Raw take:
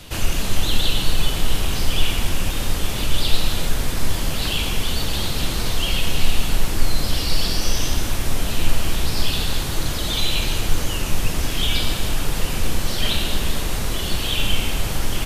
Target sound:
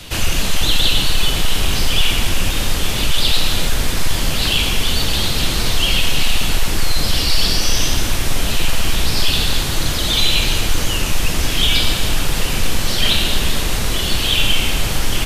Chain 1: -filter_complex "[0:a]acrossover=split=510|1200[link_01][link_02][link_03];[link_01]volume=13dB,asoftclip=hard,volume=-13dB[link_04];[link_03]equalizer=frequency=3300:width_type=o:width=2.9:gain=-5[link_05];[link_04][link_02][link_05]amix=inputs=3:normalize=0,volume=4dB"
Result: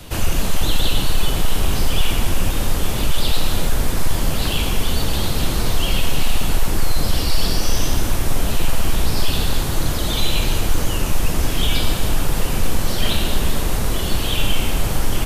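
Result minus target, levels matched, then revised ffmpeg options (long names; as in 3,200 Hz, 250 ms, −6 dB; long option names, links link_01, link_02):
4,000 Hz band −3.5 dB
-filter_complex "[0:a]acrossover=split=510|1200[link_01][link_02][link_03];[link_01]volume=13dB,asoftclip=hard,volume=-13dB[link_04];[link_03]equalizer=frequency=3300:width_type=o:width=2.9:gain=3.5[link_05];[link_04][link_02][link_05]amix=inputs=3:normalize=0,volume=4dB"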